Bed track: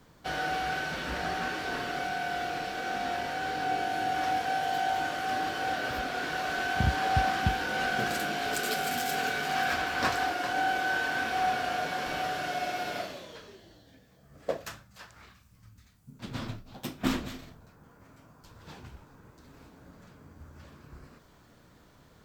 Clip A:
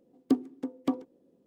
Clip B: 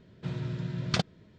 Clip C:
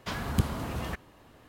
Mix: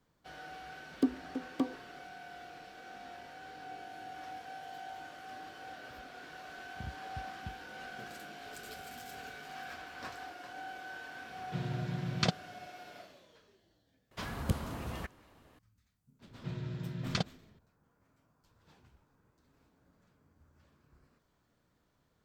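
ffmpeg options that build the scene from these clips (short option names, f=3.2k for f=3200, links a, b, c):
-filter_complex "[3:a]asplit=2[a][b];[2:a]asplit=2[c][d];[0:a]volume=-16.5dB[e];[a]acompressor=threshold=-46dB:ratio=6:attack=3.2:release=140:knee=1:detection=peak[f];[c]highpass=92[g];[1:a]atrim=end=1.46,asetpts=PTS-STARTPTS,volume=-4dB,afade=t=in:d=0.004:c=hsin,afade=t=out:st=1.456:d=0.004:c=hsin,adelay=720[h];[f]atrim=end=1.48,asetpts=PTS-STARTPTS,volume=-13.5dB,afade=t=in:d=0.004:c=hsin,afade=t=out:st=1.476:d=0.004:c=hsin,adelay=8410[i];[g]atrim=end=1.38,asetpts=PTS-STARTPTS,volume=-2dB,afade=t=in:d=0.004:c=hsin,afade=t=out:st=1.376:d=0.004:c=hsin,adelay=11290[j];[b]atrim=end=1.48,asetpts=PTS-STARTPTS,volume=-6dB,afade=t=in:d=0.004:c=hsin,afade=t=out:st=1.476:d=0.004:c=hsin,adelay=14110[k];[d]atrim=end=1.38,asetpts=PTS-STARTPTS,volume=-5.5dB,afade=t=in:d=0.004:c=hsin,afade=t=out:st=1.376:d=0.004:c=hsin,adelay=16210[l];[e][h][i][j][k][l]amix=inputs=6:normalize=0"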